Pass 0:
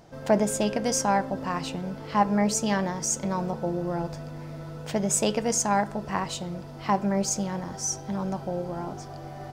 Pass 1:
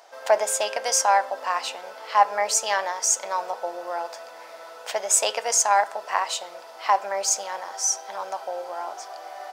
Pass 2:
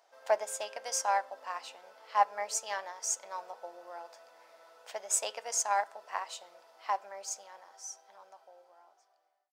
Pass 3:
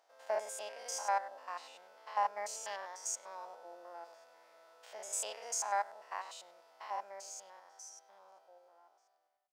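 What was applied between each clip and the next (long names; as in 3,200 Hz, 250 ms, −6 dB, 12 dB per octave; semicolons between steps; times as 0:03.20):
high-pass filter 610 Hz 24 dB per octave; level +6 dB
fade-out on the ending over 3.08 s; expander for the loud parts 1.5 to 1, over −29 dBFS; level −7.5 dB
spectrum averaged block by block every 100 ms; level −3 dB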